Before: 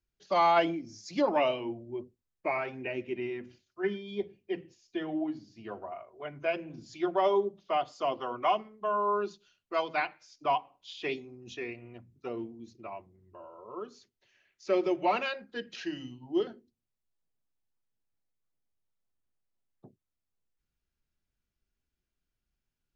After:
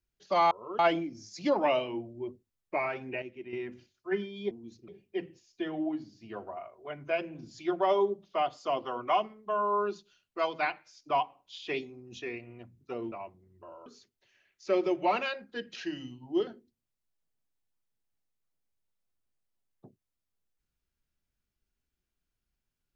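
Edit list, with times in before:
0:02.94–0:03.25: clip gain −8.5 dB
0:12.47–0:12.84: move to 0:04.23
0:13.58–0:13.86: move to 0:00.51

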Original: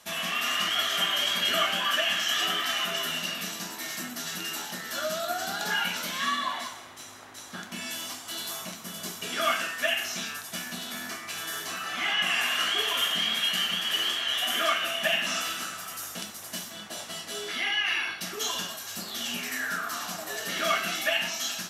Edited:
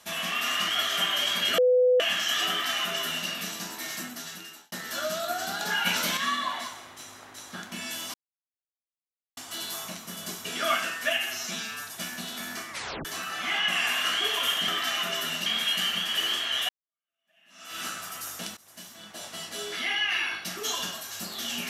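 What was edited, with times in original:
0:01.58–0:02.00: beep over 501 Hz −17 dBFS
0:02.50–0:03.28: duplicate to 0:13.22
0:03.96–0:04.72: fade out
0:05.86–0:06.17: clip gain +5.5 dB
0:08.14: splice in silence 1.23 s
0:09.96–0:10.42: time-stretch 1.5×
0:11.25: tape stop 0.34 s
0:14.45–0:15.57: fade in exponential
0:16.33–0:17.23: fade in, from −18.5 dB

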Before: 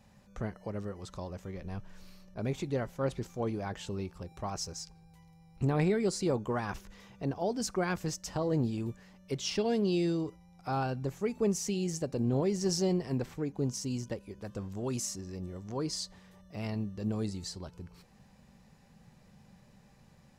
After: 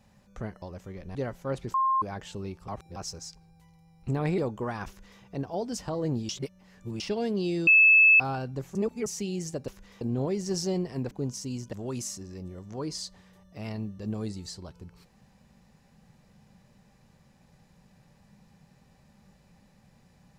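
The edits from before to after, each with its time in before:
0:00.62–0:01.21: remove
0:01.74–0:02.69: remove
0:03.28–0:03.56: beep over 1,060 Hz −21.5 dBFS
0:04.22–0:04.50: reverse
0:05.92–0:06.26: remove
0:06.76–0:07.09: duplicate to 0:12.16
0:07.65–0:08.25: remove
0:08.77–0:09.48: reverse
0:10.15–0:10.68: beep over 2,610 Hz −14 dBFS
0:11.23–0:11.54: reverse
0:13.26–0:13.51: remove
0:14.13–0:14.71: remove

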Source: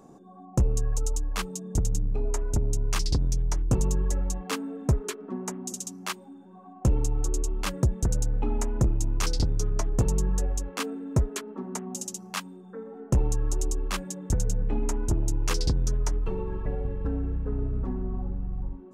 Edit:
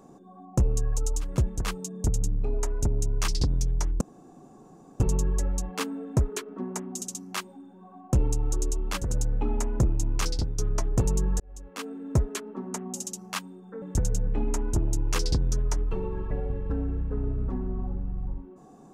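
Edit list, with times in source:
0:03.72: splice in room tone 0.99 s
0:07.76–0:08.05: move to 0:01.31, crossfade 0.24 s
0:09.18–0:09.59: fade out, to −6.5 dB
0:10.41–0:11.17: fade in
0:12.83–0:14.17: remove

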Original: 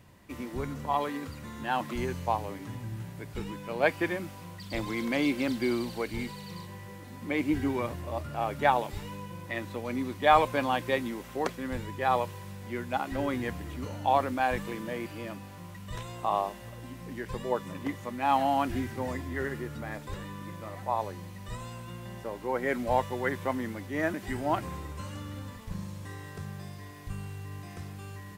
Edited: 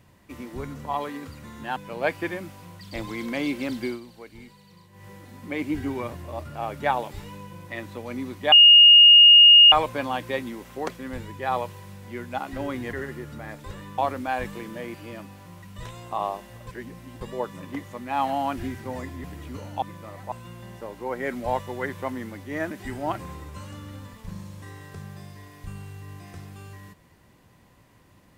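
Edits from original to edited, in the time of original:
0:01.76–0:03.55: remove
0:05.64–0:06.86: duck −11 dB, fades 0.15 s
0:10.31: insert tone 2,850 Hz −8 dBFS 1.20 s
0:13.52–0:14.10: swap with 0:19.36–0:20.41
0:16.79–0:17.33: reverse
0:20.91–0:21.75: remove

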